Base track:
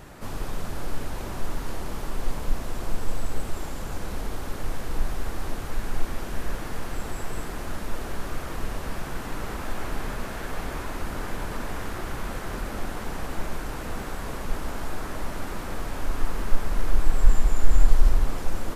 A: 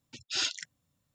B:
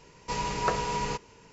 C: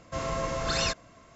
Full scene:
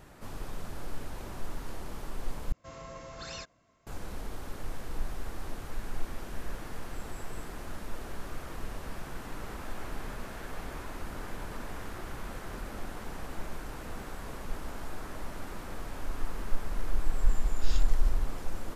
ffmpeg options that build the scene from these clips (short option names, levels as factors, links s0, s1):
-filter_complex "[0:a]volume=0.398,asplit=2[s0][s1];[s0]atrim=end=2.524[s2];[3:a]atrim=end=1.35,asetpts=PTS-STARTPTS,volume=0.2[s3];[s1]atrim=start=3.866[s4];[1:a]atrim=end=1.14,asetpts=PTS-STARTPTS,volume=0.178,afade=t=in:d=0.004:c=hsin,afade=t=out:st=1.136:d=0.004:c=hsin,adelay=17310[s5];[s2][s3]acrossfade=d=0.004:c1=hsin:c2=hsin[s6];[s6][s4]acrossfade=d=0.004:c1=hsin:c2=hsin[s7];[s7][s5]amix=inputs=2:normalize=0"